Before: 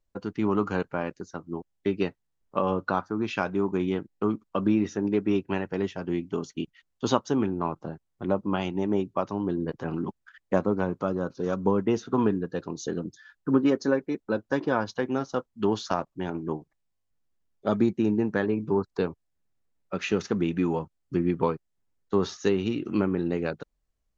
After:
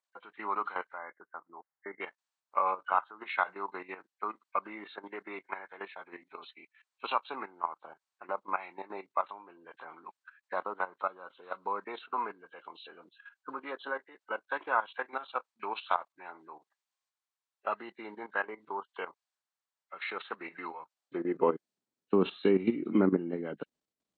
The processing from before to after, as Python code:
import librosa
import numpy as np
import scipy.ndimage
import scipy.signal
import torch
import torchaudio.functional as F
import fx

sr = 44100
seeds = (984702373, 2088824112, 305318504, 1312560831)

y = fx.freq_compress(x, sr, knee_hz=1500.0, ratio=1.5)
y = fx.level_steps(y, sr, step_db=13)
y = fx.filter_sweep_highpass(y, sr, from_hz=1000.0, to_hz=230.0, start_s=20.86, end_s=21.68, q=1.4)
y = fx.brickwall_lowpass(y, sr, high_hz=2200.0, at=(0.97, 2.0), fade=0.02)
y = y * 10.0 ** (1.0 / 20.0)